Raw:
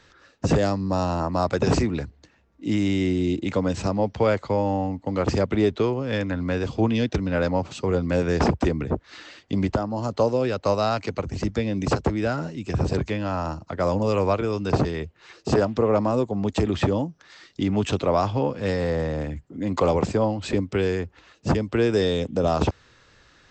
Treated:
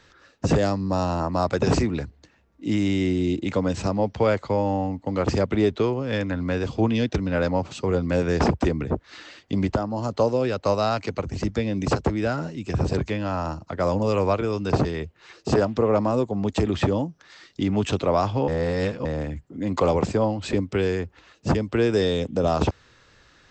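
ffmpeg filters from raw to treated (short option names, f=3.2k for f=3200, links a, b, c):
-filter_complex "[0:a]asplit=3[a][b][c];[a]atrim=end=18.482[d];[b]atrim=start=18.478:end=19.052,asetpts=PTS-STARTPTS,areverse[e];[c]atrim=start=19.048[f];[d][e]acrossfade=d=0.004:c1=hsin:c2=hsin[g];[g][f]acrossfade=d=0.004:c1=hsin:c2=hsin"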